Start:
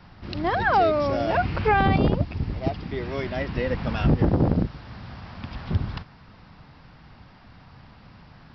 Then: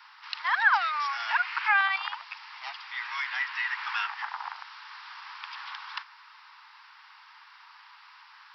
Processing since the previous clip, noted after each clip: steep high-pass 890 Hz 72 dB/octave; dynamic bell 1.8 kHz, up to +5 dB, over -44 dBFS, Q 1.6; in parallel at -0.5 dB: compression, threshold -34 dBFS, peak gain reduction 17 dB; on the sum: trim -2 dB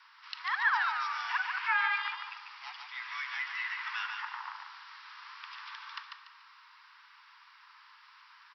frequency shift +55 Hz; feedback delay 145 ms, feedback 34%, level -5 dB; on a send at -11.5 dB: reverberation RT60 2.0 s, pre-delay 3 ms; on the sum: trim -6.5 dB

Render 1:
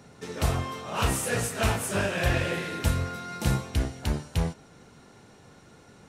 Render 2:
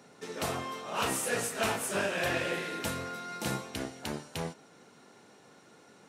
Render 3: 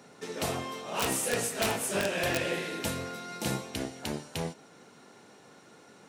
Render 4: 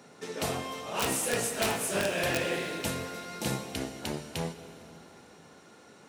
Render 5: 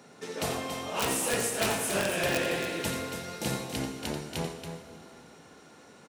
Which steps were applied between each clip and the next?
high-pass 230 Hz 12 dB/octave; trim -2.5 dB
integer overflow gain 20 dB; dynamic bell 1.3 kHz, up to -5 dB, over -49 dBFS, Q 1.4; trim +2.5 dB
plate-style reverb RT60 3.6 s, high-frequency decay 0.85×, DRR 10.5 dB
loudspeakers at several distances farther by 30 m -9 dB, 96 m -8 dB

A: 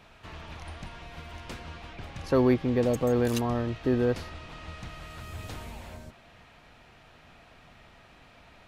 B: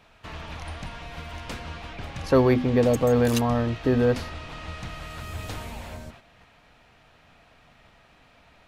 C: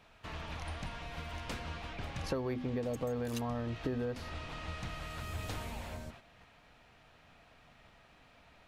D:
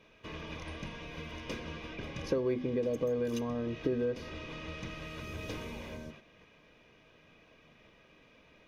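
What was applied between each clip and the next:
hum notches 50/100/150/200/250 Hz; gate -52 dBFS, range -7 dB; band-stop 360 Hz, Q 12; trim +5.5 dB
compression 16:1, threshold -27 dBFS, peak gain reduction 14 dB; trim -5 dB
reverberation RT60 0.60 s, pre-delay 3 ms, DRR 14 dB; trim -6 dB

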